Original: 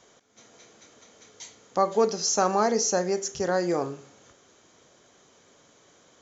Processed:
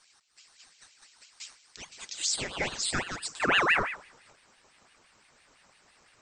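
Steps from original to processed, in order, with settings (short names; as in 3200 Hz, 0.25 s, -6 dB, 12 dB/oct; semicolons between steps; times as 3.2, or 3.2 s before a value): notch comb 410 Hz; high-pass sweep 3400 Hz -> 83 Hz, 2.05–4.64; ring modulator with a swept carrier 1500 Hz, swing 55%, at 5.9 Hz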